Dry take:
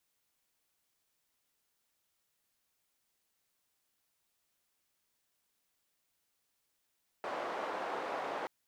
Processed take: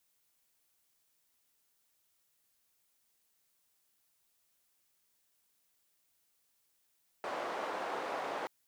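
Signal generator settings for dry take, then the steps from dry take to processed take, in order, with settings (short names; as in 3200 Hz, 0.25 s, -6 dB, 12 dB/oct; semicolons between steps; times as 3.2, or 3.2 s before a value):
noise band 570–730 Hz, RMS -38.5 dBFS 1.23 s
high shelf 5700 Hz +6 dB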